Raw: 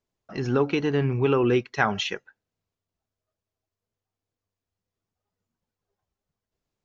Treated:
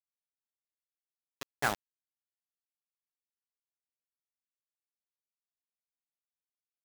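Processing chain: Doppler pass-by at 1.66 s, 32 m/s, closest 2.9 m; bit crusher 4-bit; trim -8 dB

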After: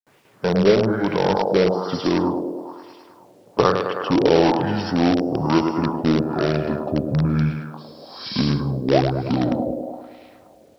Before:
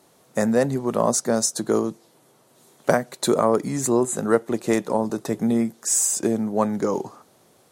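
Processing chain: gliding tape speed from 85% -> 58%; gate with hold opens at -47 dBFS; thinning echo 105 ms, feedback 77%, high-pass 200 Hz, level -5.5 dB; LFO low-pass sine 1.1 Hz 530–2400 Hz; in parallel at -9.5 dB: integer overflow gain 12 dB; on the sum: brick-wall FIR low-pass 5.8 kHz; treble shelf 3.3 kHz +8 dB; bit crusher 10-bit; trim -1.5 dB

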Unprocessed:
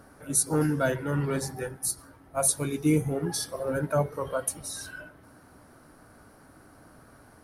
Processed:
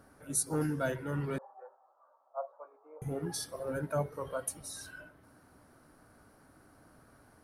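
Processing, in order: 1.38–3.02 s: elliptic band-pass 560–1200 Hz, stop band 80 dB; trim -7 dB

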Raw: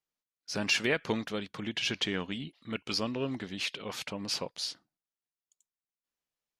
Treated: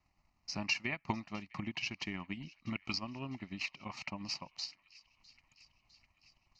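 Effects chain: added noise pink -73 dBFS; in parallel at +1 dB: compression, threshold -42 dBFS, peak gain reduction 17.5 dB; on the sum: static phaser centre 2.3 kHz, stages 8; transient shaper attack +8 dB, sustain -9 dB; distance through air 120 m; on a send: feedback echo behind a high-pass 655 ms, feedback 67%, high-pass 1.8 kHz, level -21 dB; on the sum: trim -6.5 dB

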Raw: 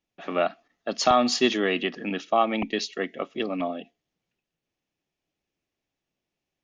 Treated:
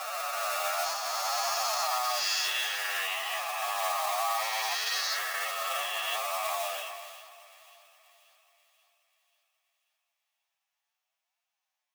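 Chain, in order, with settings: reverse spectral sustain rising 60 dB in 2.57 s; treble shelf 2.2 kHz -8.5 dB; feedback echo behind a high-pass 112 ms, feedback 44%, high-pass 4.4 kHz, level -16 dB; flange 1.1 Hz, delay 3.6 ms, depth 9.7 ms, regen +37%; in parallel at -7.5 dB: sample-rate reducer 3.1 kHz, jitter 20%; on the sum: gain riding 2 s; time stretch by phase-locked vocoder 1.8×; steep high-pass 790 Hz 36 dB/octave; peak limiter -22.5 dBFS, peak gain reduction 10.5 dB; treble shelf 5.8 kHz +10.5 dB; two-band feedback delay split 1.9 kHz, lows 388 ms, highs 535 ms, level -16 dB; decay stretcher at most 29 dB/s

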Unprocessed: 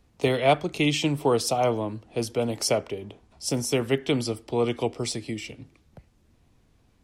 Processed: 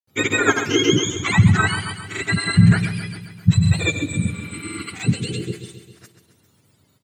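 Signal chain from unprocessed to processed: spectrum inverted on a logarithmic axis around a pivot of 980 Hz; spectral replace 4.06–4.85 s, 360–7700 Hz both; granulator, pitch spread up and down by 0 st; on a send: feedback delay 134 ms, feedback 58%, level -11 dB; on the sum: trim +7.5 dB

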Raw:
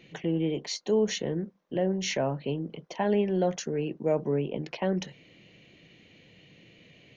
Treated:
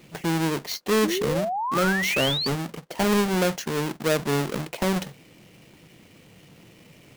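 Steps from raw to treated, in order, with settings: square wave that keeps the level; painted sound rise, 1.03–2.48 s, 290–4700 Hz -27 dBFS

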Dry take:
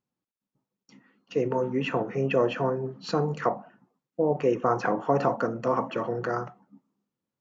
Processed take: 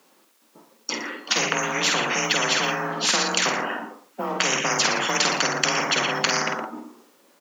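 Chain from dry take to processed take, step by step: high-pass 370 Hz 12 dB/octave; frequency shift +31 Hz; doubling 49 ms -7 dB; delay 116 ms -15.5 dB; spectrum-flattening compressor 10:1; trim +9 dB

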